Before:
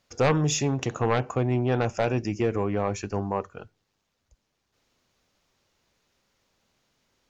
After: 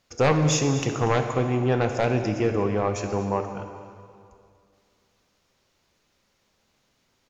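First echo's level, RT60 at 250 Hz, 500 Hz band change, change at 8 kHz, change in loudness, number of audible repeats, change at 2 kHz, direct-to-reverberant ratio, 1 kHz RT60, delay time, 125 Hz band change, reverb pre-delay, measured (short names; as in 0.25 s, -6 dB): -16.0 dB, 2.3 s, +2.5 dB, n/a, +2.5 dB, 1, +2.5 dB, 5.5 dB, 2.3 s, 0.24 s, +2.0 dB, 7 ms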